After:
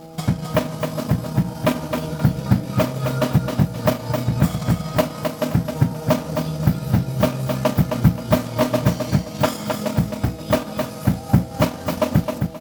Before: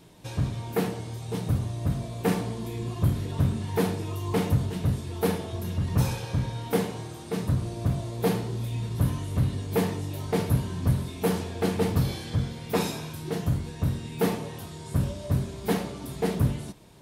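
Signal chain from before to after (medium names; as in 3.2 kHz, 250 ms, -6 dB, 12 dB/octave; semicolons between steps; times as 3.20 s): peaking EQ 280 Hz -9.5 dB 0.45 oct; in parallel at -2 dB: compression, threshold -32 dBFS, peak gain reduction 13.5 dB; on the sum: transient shaper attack +6 dB, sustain -7 dB; mains buzz 120 Hz, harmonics 5, -42 dBFS -1 dB/octave; on a send: feedback delay 356 ms, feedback 28%, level -5.5 dB; on the sum: speed mistake 33 rpm record played at 45 rpm; trim +2 dB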